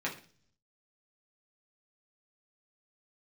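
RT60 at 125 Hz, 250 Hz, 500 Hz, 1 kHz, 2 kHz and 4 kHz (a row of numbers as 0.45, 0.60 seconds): 0.95, 0.70, 0.50, 0.40, 0.40, 0.55 seconds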